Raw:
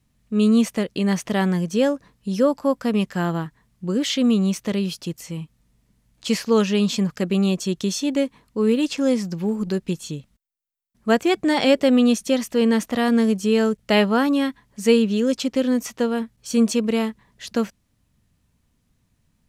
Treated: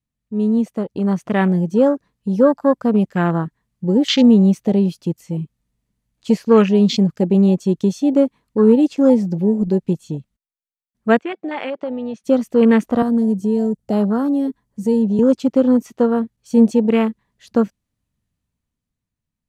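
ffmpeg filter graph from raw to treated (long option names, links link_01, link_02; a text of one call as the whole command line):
ffmpeg -i in.wav -filter_complex "[0:a]asettb=1/sr,asplit=3[link_01][link_02][link_03];[link_01]atrim=end=11.194[link_04];[link_02]atrim=start=11.19:end=12.24,asetpts=PTS-STARTPTS,afade=type=in:duration=0.004:curve=qsin,afade=type=out:start_time=1.046:duration=0.004:curve=qsin,lowshelf=frequency=430:gain=-11.5,acompressor=threshold=-23dB:ratio=16:attack=3.2:release=140:knee=1:detection=peak,highpass=210,lowpass=3400[link_05];[link_03]atrim=start=12.236[link_06];[link_04][link_05]acrossfade=duration=0.004:curve1=hsin:curve2=qsin[link_07];[link_07][link_06]acrossfade=duration=0.004:curve1=qsin:curve2=hsin,asettb=1/sr,asplit=3[link_08][link_09][link_10];[link_08]atrim=end=13.024[link_11];[link_09]atrim=start=13.02:end=15.19,asetpts=PTS-STARTPTS,afade=type=in:duration=0.004:curve=qsin,afade=type=out:start_time=2.166:duration=0.004:curve=qsin,equalizer=frequency=2500:width=0.67:gain=-8.5,acrossover=split=190|3000[link_12][link_13][link_14];[link_13]acompressor=threshold=-31dB:ratio=2:attack=3.2:release=140:knee=2.83:detection=peak[link_15];[link_12][link_15][link_14]amix=inputs=3:normalize=0[link_16];[link_10]atrim=start=15.186[link_17];[link_11][link_16]acrossfade=duration=0.004:curve1=hsin:curve2=qsin[link_18];[link_18][link_17]acrossfade=duration=0.004:curve1=qsin:curve2=hsin,afwtdn=0.0316,bandreject=frequency=5300:width=27,dynaudnorm=framelen=110:gausssize=21:maxgain=11.5dB,volume=-1dB" out.wav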